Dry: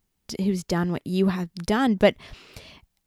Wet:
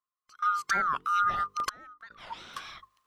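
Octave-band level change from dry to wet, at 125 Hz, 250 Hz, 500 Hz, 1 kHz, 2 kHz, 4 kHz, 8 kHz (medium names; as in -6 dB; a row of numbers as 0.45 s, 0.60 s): -25.5 dB, -29.5 dB, -24.5 dB, +4.5 dB, 0.0 dB, -7.5 dB, -3.5 dB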